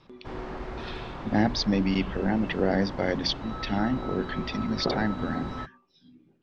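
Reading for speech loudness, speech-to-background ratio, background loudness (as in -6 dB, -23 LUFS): -28.0 LUFS, 9.0 dB, -37.0 LUFS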